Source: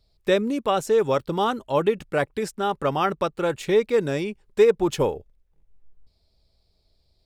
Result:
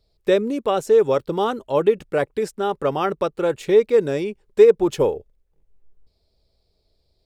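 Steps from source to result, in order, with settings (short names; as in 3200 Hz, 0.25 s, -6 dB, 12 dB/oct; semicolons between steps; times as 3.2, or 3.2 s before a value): bell 440 Hz +6.5 dB 0.99 oct; gain -1.5 dB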